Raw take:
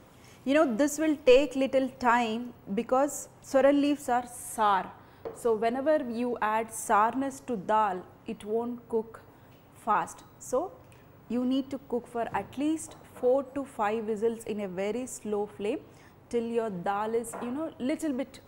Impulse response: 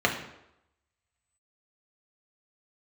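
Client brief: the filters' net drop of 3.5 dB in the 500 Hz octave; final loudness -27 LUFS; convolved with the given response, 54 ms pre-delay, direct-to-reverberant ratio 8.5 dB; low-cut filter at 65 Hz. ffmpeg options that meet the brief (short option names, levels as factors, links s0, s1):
-filter_complex "[0:a]highpass=65,equalizer=f=500:t=o:g=-4,asplit=2[s0][s1];[1:a]atrim=start_sample=2205,adelay=54[s2];[s1][s2]afir=irnorm=-1:irlink=0,volume=0.0708[s3];[s0][s3]amix=inputs=2:normalize=0,volume=1.5"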